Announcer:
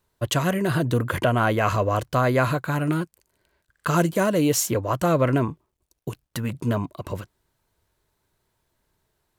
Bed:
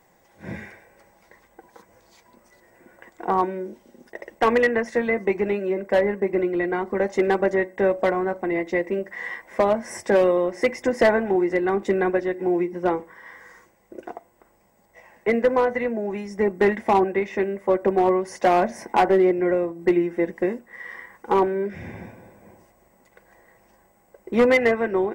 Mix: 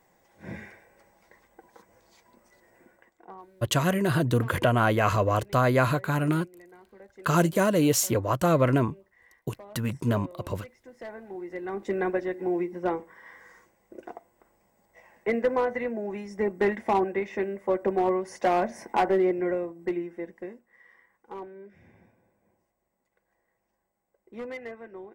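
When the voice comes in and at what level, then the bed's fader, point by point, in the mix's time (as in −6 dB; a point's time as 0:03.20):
3.40 s, −1.5 dB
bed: 0:02.83 −5 dB
0:03.44 −27.5 dB
0:10.85 −27.5 dB
0:12.02 −5.5 dB
0:19.41 −5.5 dB
0:20.97 −20.5 dB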